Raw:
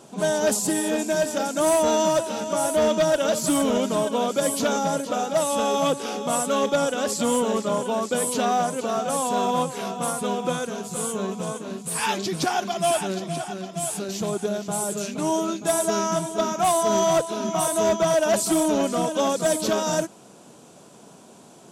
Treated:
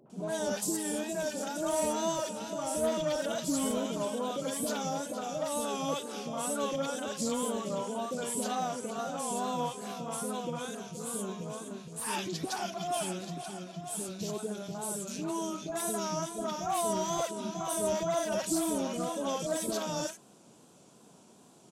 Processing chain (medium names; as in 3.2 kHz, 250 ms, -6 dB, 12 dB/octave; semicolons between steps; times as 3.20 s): three bands offset in time lows, mids, highs 60/100 ms, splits 600/1800 Hz; wow and flutter 69 cents; trim -8.5 dB